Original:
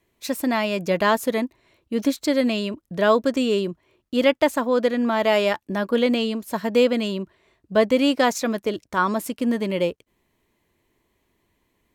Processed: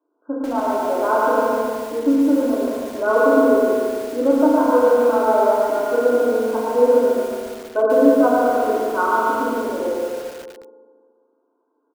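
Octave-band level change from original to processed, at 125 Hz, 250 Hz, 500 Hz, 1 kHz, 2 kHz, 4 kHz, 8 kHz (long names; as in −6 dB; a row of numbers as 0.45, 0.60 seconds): below −10 dB, +3.0 dB, +5.5 dB, +6.5 dB, 0.0 dB, below −10 dB, can't be measured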